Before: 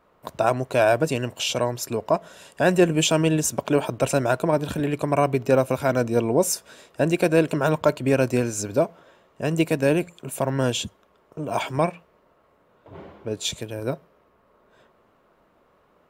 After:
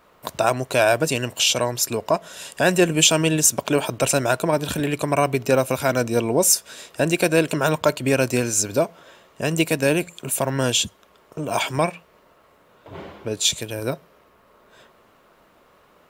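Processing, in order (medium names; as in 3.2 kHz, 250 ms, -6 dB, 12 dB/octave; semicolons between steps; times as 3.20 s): treble shelf 2 kHz +10 dB; in parallel at -1.5 dB: compression, threshold -31 dBFS, peak gain reduction 19 dB; on the sum: trim -1.5 dB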